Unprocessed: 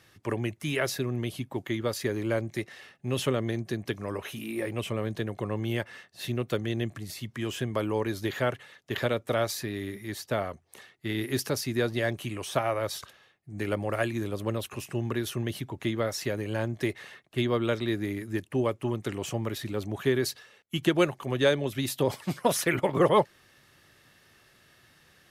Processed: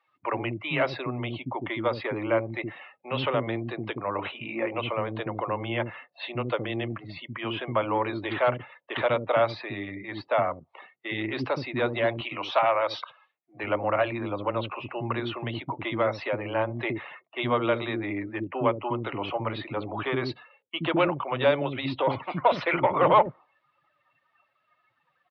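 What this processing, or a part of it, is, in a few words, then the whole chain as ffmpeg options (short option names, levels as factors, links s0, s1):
overdrive pedal into a guitar cabinet: -filter_complex "[0:a]asplit=2[s0][s1];[s1]highpass=f=720:p=1,volume=7.08,asoftclip=type=tanh:threshold=0.335[s2];[s0][s2]amix=inputs=2:normalize=0,lowpass=f=1800:p=1,volume=0.501,highpass=96,equalizer=f=210:t=q:w=4:g=-6,equalizer=f=410:t=q:w=4:g=-8,equalizer=f=960:t=q:w=4:g=3,equalizer=f=1700:t=q:w=4:g=-9,equalizer=f=3200:t=q:w=4:g=-3,lowpass=f=3700:w=0.5412,lowpass=f=3700:w=1.3066,asettb=1/sr,asplit=3[s3][s4][s5];[s3]atrim=end=12.144[s6];[s4]atrim=start=12.14:end=13.57,asetpts=PTS-STARTPTS,afade=t=in:d=0.004:c=qsin,afade=t=out:st=1.426:d=0.004:c=qsin,aemphasis=mode=production:type=bsi[s7];[s5]atrim=start=13.566[s8];[s6][s7]acrossfade=d=0.004:c1=hsin:c2=qsin[s9];[s9][s8]acrossfade=d=0.004:c1=qsin:c2=hsin,afftdn=nr=22:nf=-47,acrossover=split=360[s10][s11];[s10]adelay=70[s12];[s12][s11]amix=inputs=2:normalize=0,volume=1.19"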